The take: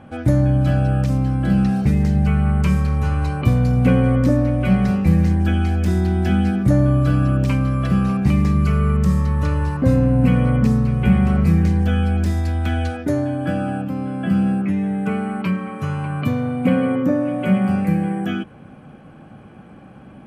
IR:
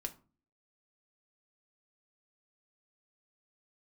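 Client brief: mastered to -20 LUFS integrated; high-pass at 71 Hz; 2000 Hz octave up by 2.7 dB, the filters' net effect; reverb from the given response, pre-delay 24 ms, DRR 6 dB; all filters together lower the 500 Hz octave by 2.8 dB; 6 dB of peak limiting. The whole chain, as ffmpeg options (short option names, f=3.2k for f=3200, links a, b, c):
-filter_complex "[0:a]highpass=71,equalizer=f=500:t=o:g=-3.5,equalizer=f=2k:t=o:g=4,alimiter=limit=-10.5dB:level=0:latency=1,asplit=2[a][b];[1:a]atrim=start_sample=2205,adelay=24[c];[b][c]afir=irnorm=-1:irlink=0,volume=-4.5dB[d];[a][d]amix=inputs=2:normalize=0,volume=-0.5dB"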